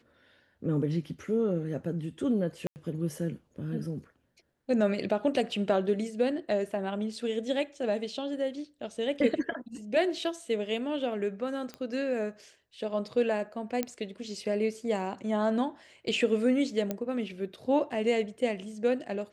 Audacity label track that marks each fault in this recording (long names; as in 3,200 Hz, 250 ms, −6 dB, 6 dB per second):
2.670000	2.760000	drop-out 89 ms
11.740000	11.740000	click −25 dBFS
13.830000	13.830000	click −15 dBFS
16.910000	16.910000	click −17 dBFS